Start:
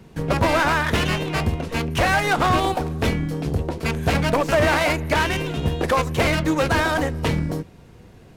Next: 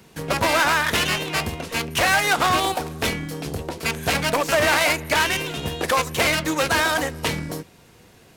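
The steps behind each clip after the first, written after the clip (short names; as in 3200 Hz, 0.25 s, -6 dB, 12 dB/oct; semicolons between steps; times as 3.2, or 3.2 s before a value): tilt +2.5 dB/oct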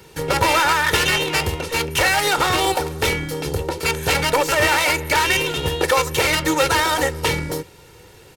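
limiter -11.5 dBFS, peak gain reduction 5.5 dB; comb 2.2 ms, depth 63%; gain +4 dB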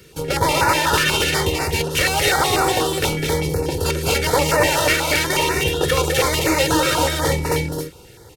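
on a send: loudspeakers at several distances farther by 70 m -5 dB, 92 m -3 dB; on the sum: stepped notch 8.2 Hz 870–3200 Hz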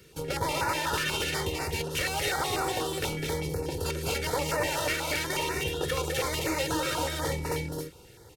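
compressor 1.5:1, threshold -24 dBFS, peak gain reduction 4.5 dB; gain -8 dB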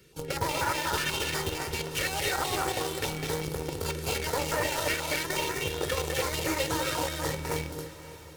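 flange 0.56 Hz, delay 5.1 ms, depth 7 ms, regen -73%; in parallel at -6 dB: bit-crush 5-bit; on the sum: diffused feedback echo 0.595 s, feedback 47%, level -15.5 dB; gain +1 dB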